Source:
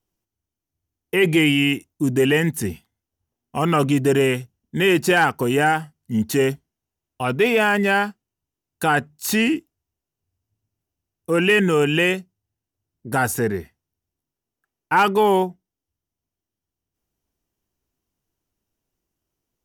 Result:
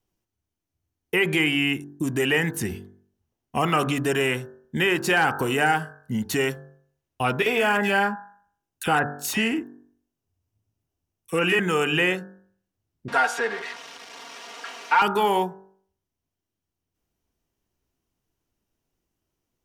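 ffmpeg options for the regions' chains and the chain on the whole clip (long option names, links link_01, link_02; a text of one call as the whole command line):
ffmpeg -i in.wav -filter_complex "[0:a]asettb=1/sr,asplit=3[link_01][link_02][link_03];[link_01]atrim=end=7.424[link_04];[link_02]atrim=start=7.42:end=11.59,asetpts=PTS-STARTPTS,afade=type=in:duration=0.004:curve=qsin,afade=type=out:start_time=4.166:duration=0.004:curve=qsin,equalizer=frequency=4300:width=6:gain=-4.5,acrossover=split=2000[link_05][link_06];[link_05]adelay=40[link_07];[link_07][link_06]amix=inputs=2:normalize=0,atrim=end_sample=183897[link_08];[link_03]atrim=start=11.586[link_09];[link_04][link_08]acrossfade=duration=0.004:curve1=hsin:curve2=qsin[link_10];[link_10][link_09]acrossfade=duration=0.004:curve1=qsin:curve2=hsin,asettb=1/sr,asplit=3[link_11][link_12][link_13];[link_11]atrim=end=13.084[link_14];[link_12]atrim=start=13.08:end=15.02,asetpts=PTS-STARTPTS,afade=type=in:duration=0.004:curve=qsin,afade=type=out:start_time=1.936:duration=0.004:curve=qsin,aeval=exprs='val(0)+0.5*0.0398*sgn(val(0))':channel_layout=same,highpass=780,lowpass=4400,aecho=1:1:4.3:0.83,atrim=end_sample=85554[link_15];[link_13]atrim=start=15.016[link_16];[link_14][link_15]acrossfade=duration=0.004:curve1=hsin:curve2=qsin[link_17];[link_17][link_16]acrossfade=duration=0.004:curve1=qsin:curve2=hsin,highshelf=frequency=5700:gain=-5,bandreject=frequency=48.05:width_type=h:width=4,bandreject=frequency=96.1:width_type=h:width=4,bandreject=frequency=144.15:width_type=h:width=4,bandreject=frequency=192.2:width_type=h:width=4,bandreject=frequency=240.25:width_type=h:width=4,bandreject=frequency=288.3:width_type=h:width=4,bandreject=frequency=336.35:width_type=h:width=4,bandreject=frequency=384.4:width_type=h:width=4,bandreject=frequency=432.45:width_type=h:width=4,bandreject=frequency=480.5:width_type=h:width=4,bandreject=frequency=528.55:width_type=h:width=4,bandreject=frequency=576.6:width_type=h:width=4,bandreject=frequency=624.65:width_type=h:width=4,bandreject=frequency=672.7:width_type=h:width=4,bandreject=frequency=720.75:width_type=h:width=4,bandreject=frequency=768.8:width_type=h:width=4,bandreject=frequency=816.85:width_type=h:width=4,bandreject=frequency=864.9:width_type=h:width=4,bandreject=frequency=912.95:width_type=h:width=4,bandreject=frequency=961:width_type=h:width=4,bandreject=frequency=1009.05:width_type=h:width=4,bandreject=frequency=1057.1:width_type=h:width=4,bandreject=frequency=1105.15:width_type=h:width=4,bandreject=frequency=1153.2:width_type=h:width=4,bandreject=frequency=1201.25:width_type=h:width=4,bandreject=frequency=1249.3:width_type=h:width=4,bandreject=frequency=1297.35:width_type=h:width=4,bandreject=frequency=1345.4:width_type=h:width=4,bandreject=frequency=1393.45:width_type=h:width=4,bandreject=frequency=1441.5:width_type=h:width=4,bandreject=frequency=1489.55:width_type=h:width=4,bandreject=frequency=1537.6:width_type=h:width=4,bandreject=frequency=1585.65:width_type=h:width=4,bandreject=frequency=1633.7:width_type=h:width=4,bandreject=frequency=1681.75:width_type=h:width=4,bandreject=frequency=1729.8:width_type=h:width=4,bandreject=frequency=1777.85:width_type=h:width=4,acrossover=split=740|2000[link_18][link_19][link_20];[link_18]acompressor=threshold=-27dB:ratio=4[link_21];[link_19]acompressor=threshold=-23dB:ratio=4[link_22];[link_20]acompressor=threshold=-28dB:ratio=4[link_23];[link_21][link_22][link_23]amix=inputs=3:normalize=0,volume=2dB" out.wav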